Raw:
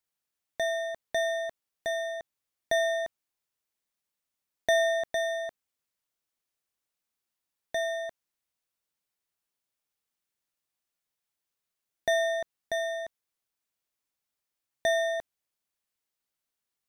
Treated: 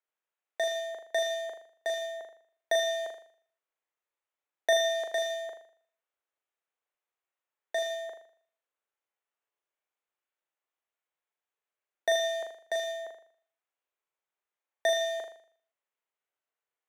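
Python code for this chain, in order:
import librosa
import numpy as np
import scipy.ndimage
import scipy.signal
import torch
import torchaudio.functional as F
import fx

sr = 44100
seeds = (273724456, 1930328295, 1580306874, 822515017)

y = fx.wiener(x, sr, points=9)
y = scipy.signal.sosfilt(scipy.signal.butter(4, 380.0, 'highpass', fs=sr, output='sos'), y)
y = fx.room_flutter(y, sr, wall_m=6.8, rt60_s=0.52)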